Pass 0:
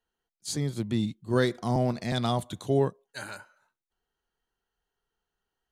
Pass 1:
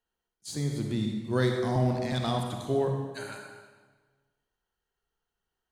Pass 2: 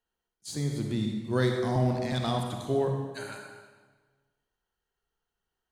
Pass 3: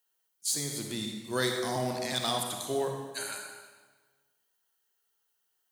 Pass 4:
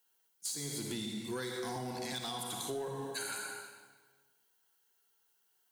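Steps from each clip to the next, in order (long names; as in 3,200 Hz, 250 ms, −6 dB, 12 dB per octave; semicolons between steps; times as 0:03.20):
de-essing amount 65%; convolution reverb RT60 1.4 s, pre-delay 39 ms, DRR 2.5 dB; level −3 dB
no processing that can be heard
RIAA equalisation recording
downward compressor 10 to 1, threshold −37 dBFS, peak gain reduction 13.5 dB; notch comb filter 610 Hz; soft clipping −34 dBFS, distortion −19 dB; level +4 dB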